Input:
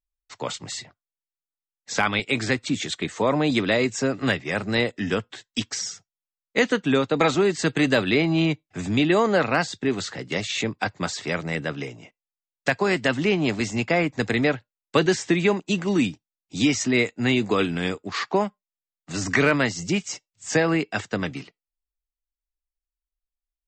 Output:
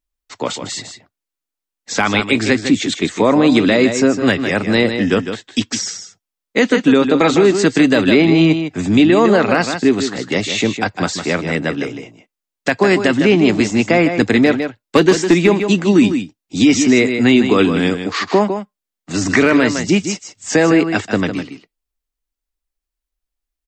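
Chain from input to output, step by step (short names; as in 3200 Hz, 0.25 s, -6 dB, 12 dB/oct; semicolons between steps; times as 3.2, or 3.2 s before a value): bell 280 Hz +5.5 dB 1.2 oct; 14.46–15.91 hard clip -10 dBFS, distortion -29 dB; bell 140 Hz -7.5 dB 0.29 oct; on a send: echo 0.155 s -9 dB; on the sum: maximiser +8.5 dB; gain -1.5 dB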